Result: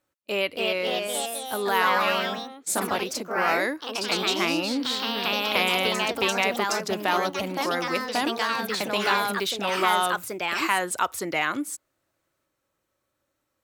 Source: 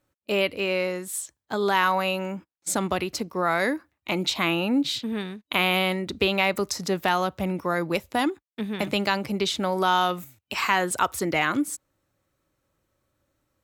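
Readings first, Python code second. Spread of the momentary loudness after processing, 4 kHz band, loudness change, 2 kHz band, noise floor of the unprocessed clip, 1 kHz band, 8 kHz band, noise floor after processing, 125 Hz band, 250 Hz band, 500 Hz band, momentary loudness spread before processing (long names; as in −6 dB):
6 LU, +2.5 dB, +0.5 dB, +1.5 dB, below −85 dBFS, +0.5 dB, +1.5 dB, −78 dBFS, −7.0 dB, −4.0 dB, −0.5 dB, 10 LU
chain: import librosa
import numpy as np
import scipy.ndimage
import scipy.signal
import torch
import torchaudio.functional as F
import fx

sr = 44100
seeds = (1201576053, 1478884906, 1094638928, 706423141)

y = fx.echo_pitch(x, sr, ms=310, semitones=2, count=3, db_per_echo=-3.0)
y = fx.low_shelf(y, sr, hz=220.0, db=-11.5)
y = F.gain(torch.from_numpy(y), -1.0).numpy()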